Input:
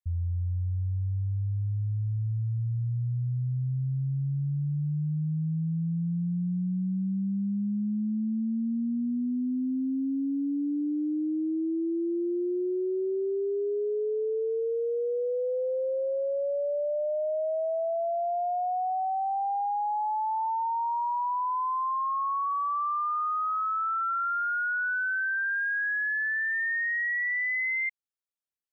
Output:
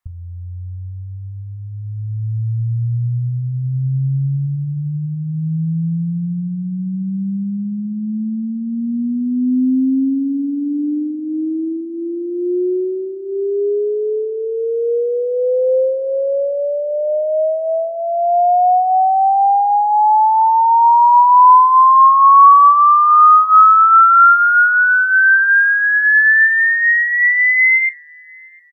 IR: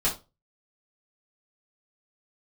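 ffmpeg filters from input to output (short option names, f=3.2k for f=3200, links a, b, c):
-filter_complex "[0:a]equalizer=f=1.2k:w=0.92:g=12.5,asplit=2[a][b];[b]adelay=703,lowpass=f=1.5k:p=1,volume=-23.5dB,asplit=2[c][d];[d]adelay=703,lowpass=f=1.5k:p=1,volume=0.49,asplit=2[e][f];[f]adelay=703,lowpass=f=1.5k:p=1,volume=0.49[g];[a][c][e][g]amix=inputs=4:normalize=0,asplit=2[h][i];[1:a]atrim=start_sample=2205,asetrate=70560,aresample=44100[j];[i][j]afir=irnorm=-1:irlink=0,volume=-14dB[k];[h][k]amix=inputs=2:normalize=0,volume=7dB"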